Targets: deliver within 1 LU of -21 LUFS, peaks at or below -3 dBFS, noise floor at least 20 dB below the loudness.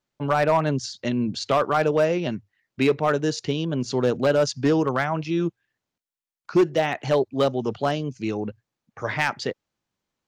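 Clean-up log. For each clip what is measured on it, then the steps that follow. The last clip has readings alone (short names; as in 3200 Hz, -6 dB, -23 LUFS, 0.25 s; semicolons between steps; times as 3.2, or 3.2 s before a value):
clipped 0.6%; flat tops at -12.5 dBFS; loudness -24.0 LUFS; peak -12.5 dBFS; loudness target -21.0 LUFS
-> clip repair -12.5 dBFS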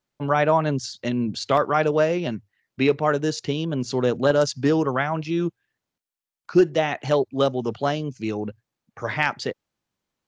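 clipped 0.0%; loudness -23.0 LUFS; peak -6.5 dBFS; loudness target -21.0 LUFS
-> gain +2 dB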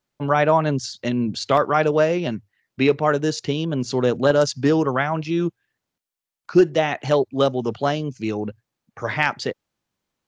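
loudness -21.0 LUFS; peak -4.5 dBFS; noise floor -83 dBFS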